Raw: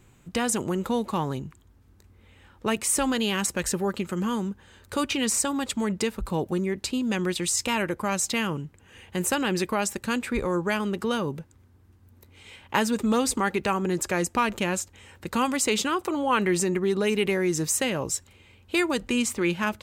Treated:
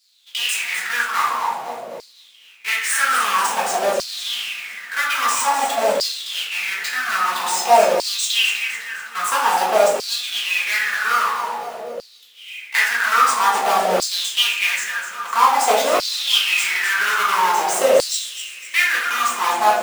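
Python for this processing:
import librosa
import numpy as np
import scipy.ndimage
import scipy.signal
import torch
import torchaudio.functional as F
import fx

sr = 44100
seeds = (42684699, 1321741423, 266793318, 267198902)

p1 = fx.halfwave_hold(x, sr)
p2 = p1 + fx.echo_split(p1, sr, split_hz=530.0, low_ms=366, high_ms=253, feedback_pct=52, wet_db=-8.5, dry=0)
p3 = fx.room_shoebox(p2, sr, seeds[0], volume_m3=180.0, walls='mixed', distance_m=1.6)
p4 = fx.filter_lfo_highpass(p3, sr, shape='saw_down', hz=0.5, low_hz=540.0, high_hz=4700.0, q=6.9)
y = p4 * librosa.db_to_amplitude(-4.5)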